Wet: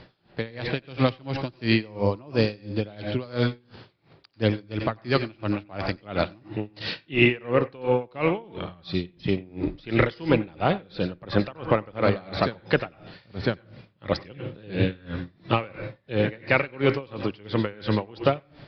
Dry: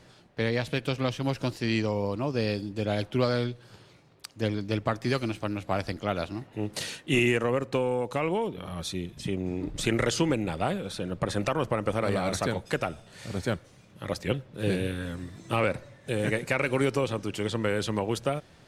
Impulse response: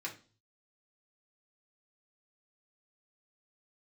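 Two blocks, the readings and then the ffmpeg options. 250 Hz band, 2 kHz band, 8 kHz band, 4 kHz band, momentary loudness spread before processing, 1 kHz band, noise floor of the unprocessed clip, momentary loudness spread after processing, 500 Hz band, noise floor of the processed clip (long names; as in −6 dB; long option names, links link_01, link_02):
+2.5 dB, +3.0 dB, below −20 dB, +1.5 dB, 9 LU, +2.5 dB, −56 dBFS, 11 LU, +2.5 dB, −60 dBFS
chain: -filter_complex "[0:a]asplit=2[link_01][link_02];[1:a]atrim=start_sample=2205,adelay=90[link_03];[link_02][link_03]afir=irnorm=-1:irlink=0,volume=-9dB[link_04];[link_01][link_04]amix=inputs=2:normalize=0,aresample=11025,aresample=44100,aeval=exprs='val(0)*pow(10,-26*(0.5-0.5*cos(2*PI*2.9*n/s))/20)':channel_layout=same,volume=8dB"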